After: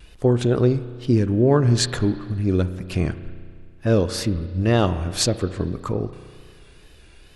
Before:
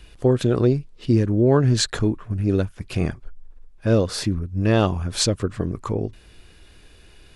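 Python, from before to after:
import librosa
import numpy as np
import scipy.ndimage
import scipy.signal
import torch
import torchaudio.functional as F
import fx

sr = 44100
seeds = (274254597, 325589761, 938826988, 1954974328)

y = fx.wow_flutter(x, sr, seeds[0], rate_hz=2.1, depth_cents=77.0)
y = fx.rev_spring(y, sr, rt60_s=2.0, pass_ms=(33,), chirp_ms=35, drr_db=12.0)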